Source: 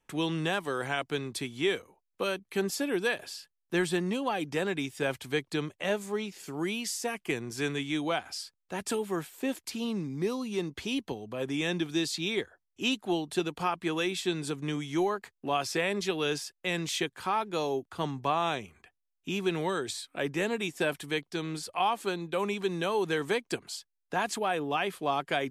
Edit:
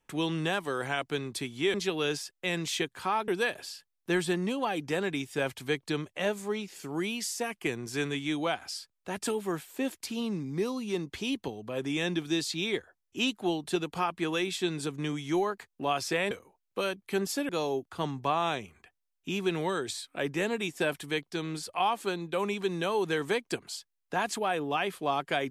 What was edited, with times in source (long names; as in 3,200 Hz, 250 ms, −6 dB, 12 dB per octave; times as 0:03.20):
0:01.74–0:02.92: swap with 0:15.95–0:17.49